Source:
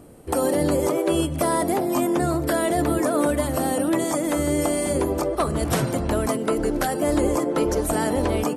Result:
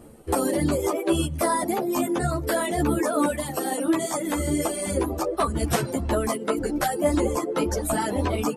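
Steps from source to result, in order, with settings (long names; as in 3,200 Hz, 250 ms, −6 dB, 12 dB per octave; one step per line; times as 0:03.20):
reverb reduction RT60 1.6 s
0:03.27–0:03.83: high-pass filter 97 Hz → 350 Hz 12 dB per octave
string-ensemble chorus
level +3.5 dB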